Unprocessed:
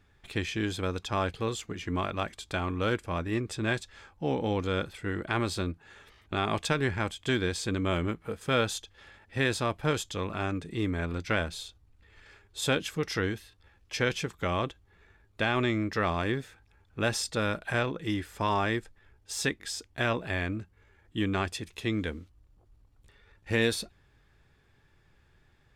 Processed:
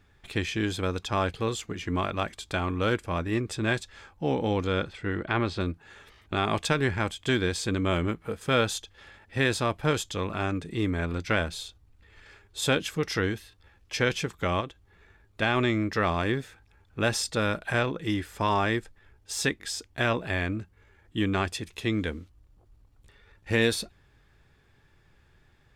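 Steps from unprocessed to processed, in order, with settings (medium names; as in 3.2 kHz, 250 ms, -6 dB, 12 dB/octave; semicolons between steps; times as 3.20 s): 4.64–5.59 s: low-pass 7.3 kHz -> 3.3 kHz 12 dB/octave; 14.60–15.42 s: compression 6:1, threshold -34 dBFS, peak gain reduction 8 dB; trim +2.5 dB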